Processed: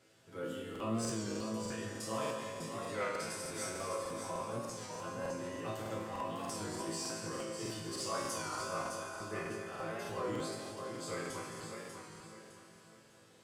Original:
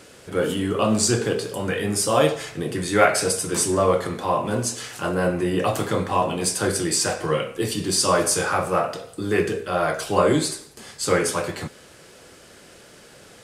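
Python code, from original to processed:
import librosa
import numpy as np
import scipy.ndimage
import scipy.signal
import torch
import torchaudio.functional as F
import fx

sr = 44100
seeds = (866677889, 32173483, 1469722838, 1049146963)

y = fx.peak_eq(x, sr, hz=10000.0, db=-5.5, octaves=0.41)
y = fx.echo_heads(y, sr, ms=83, heads='second and third', feedback_pct=60, wet_db=-10.5)
y = 10.0 ** (-9.0 / 20.0) * np.tanh(y / 10.0 ** (-9.0 / 20.0))
y = scipy.signal.sosfilt(scipy.signal.butter(2, 44.0, 'highpass', fs=sr, output='sos'), y)
y = fx.peak_eq(y, sr, hz=64.0, db=2.0, octaves=2.6)
y = fx.resonator_bank(y, sr, root=45, chord='minor', decay_s=0.67)
y = fx.echo_feedback(y, sr, ms=604, feedback_pct=35, wet_db=-7)
y = fx.buffer_crackle(y, sr, first_s=0.71, period_s=0.3, block=2048, kind='repeat')
y = fx.record_warp(y, sr, rpm=33.33, depth_cents=100.0)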